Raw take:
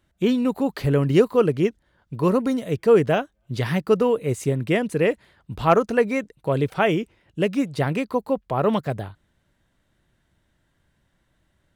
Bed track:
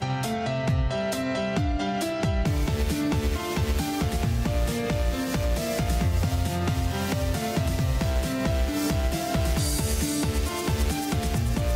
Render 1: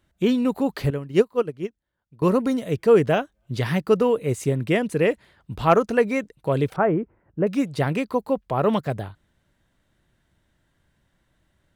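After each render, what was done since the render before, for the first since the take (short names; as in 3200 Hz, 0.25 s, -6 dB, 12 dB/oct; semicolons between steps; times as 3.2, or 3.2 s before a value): 0.9–2.22 upward expander 2.5:1, over -23 dBFS; 6.76–7.47 LPF 1500 Hz 24 dB/oct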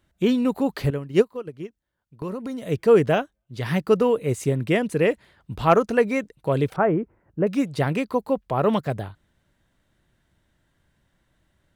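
1.34–2.68 compressor 4:1, threshold -29 dBFS; 3.21–3.73 dip -15.5 dB, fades 0.24 s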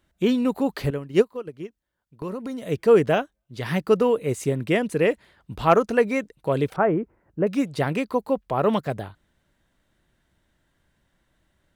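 bell 110 Hz -4 dB 1.2 oct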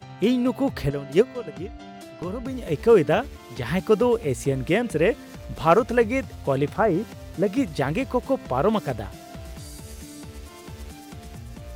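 add bed track -14 dB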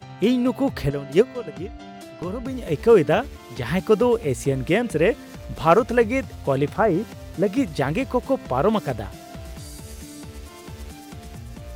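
gain +1.5 dB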